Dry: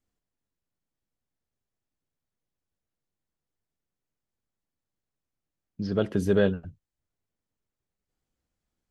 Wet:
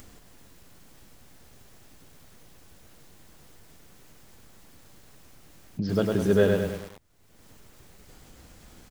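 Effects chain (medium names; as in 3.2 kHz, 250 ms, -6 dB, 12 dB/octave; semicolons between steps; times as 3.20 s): upward compressor, threshold -24 dBFS; speakerphone echo 130 ms, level -12 dB; bit-crushed delay 102 ms, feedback 55%, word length 7-bit, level -3.5 dB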